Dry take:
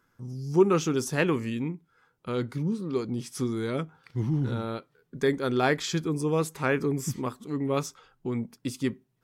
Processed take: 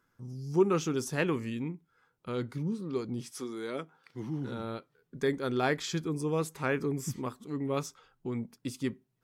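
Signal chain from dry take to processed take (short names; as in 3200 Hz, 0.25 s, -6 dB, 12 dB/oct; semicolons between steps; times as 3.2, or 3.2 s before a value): 3.3–4.59 HPF 380 Hz -> 170 Hz 12 dB/oct; gain -4.5 dB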